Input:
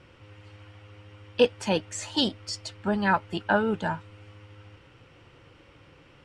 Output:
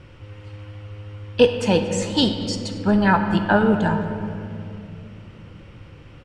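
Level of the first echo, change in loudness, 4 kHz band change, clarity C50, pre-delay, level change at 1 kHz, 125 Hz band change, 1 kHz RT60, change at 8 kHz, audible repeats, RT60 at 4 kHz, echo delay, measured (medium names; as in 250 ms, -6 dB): -19.5 dB, +7.0 dB, +4.5 dB, 7.0 dB, 19 ms, +5.5 dB, +12.0 dB, 2.2 s, +4.5 dB, 1, 1.4 s, 232 ms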